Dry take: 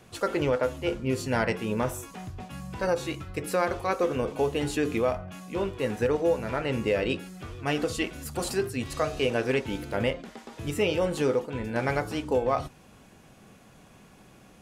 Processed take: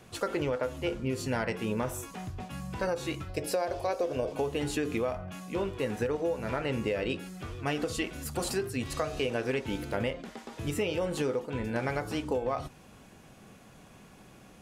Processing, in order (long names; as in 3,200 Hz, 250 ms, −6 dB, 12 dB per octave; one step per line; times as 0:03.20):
0:03.29–0:04.33: thirty-one-band graphic EQ 200 Hz −10 dB, 630 Hz +12 dB, 1,250 Hz −9 dB, 2,000 Hz −4 dB, 5,000 Hz +7 dB
downward compressor 5 to 1, threshold −27 dBFS, peak gain reduction 9 dB